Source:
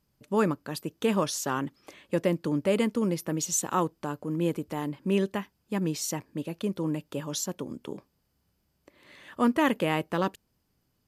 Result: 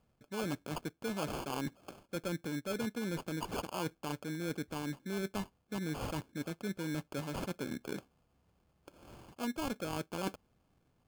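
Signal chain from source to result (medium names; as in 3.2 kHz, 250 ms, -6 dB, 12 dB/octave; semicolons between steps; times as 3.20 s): reverse; compression 6:1, threshold -36 dBFS, peak gain reduction 16 dB; reverse; sample-and-hold 23×; trim +1 dB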